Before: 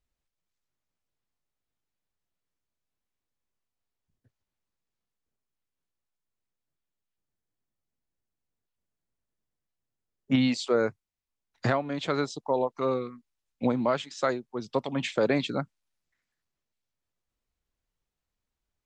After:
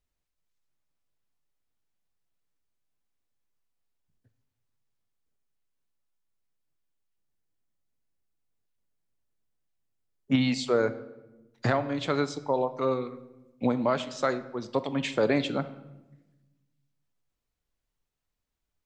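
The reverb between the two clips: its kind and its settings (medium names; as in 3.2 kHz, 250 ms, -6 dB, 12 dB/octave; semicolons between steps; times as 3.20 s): simulated room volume 500 m³, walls mixed, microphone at 0.34 m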